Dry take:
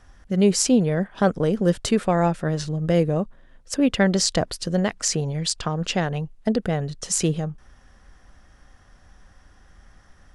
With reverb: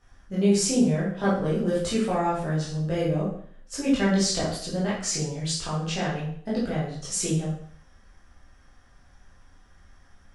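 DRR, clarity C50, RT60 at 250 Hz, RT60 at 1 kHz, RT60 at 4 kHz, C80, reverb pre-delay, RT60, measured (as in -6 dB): -9.0 dB, 3.0 dB, 0.55 s, 0.55 s, 0.55 s, 7.0 dB, 7 ms, 0.55 s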